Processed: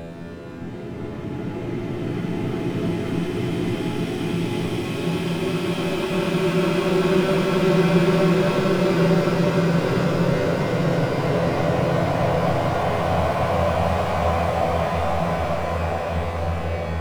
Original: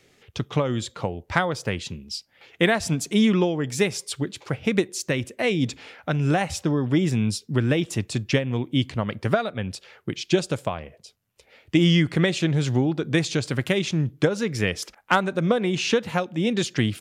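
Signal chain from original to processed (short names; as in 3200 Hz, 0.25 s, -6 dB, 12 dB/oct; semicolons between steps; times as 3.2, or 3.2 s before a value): LPF 1800 Hz 12 dB/oct; sample leveller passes 5; resonator 84 Hz, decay 1.2 s, harmonics all, mix 80%; Paulstretch 17×, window 0.50 s, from 9.9; gain +5 dB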